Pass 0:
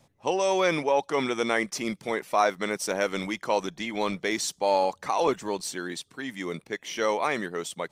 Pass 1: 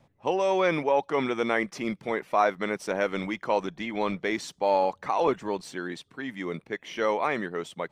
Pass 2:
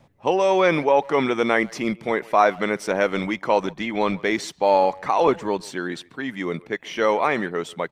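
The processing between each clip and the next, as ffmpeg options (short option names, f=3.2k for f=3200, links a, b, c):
-af "bass=f=250:g=1,treble=f=4k:g=-13"
-filter_complex "[0:a]asplit=2[a][b];[b]adelay=140,highpass=300,lowpass=3.4k,asoftclip=type=hard:threshold=-19dB,volume=-22dB[c];[a][c]amix=inputs=2:normalize=0,volume=6dB"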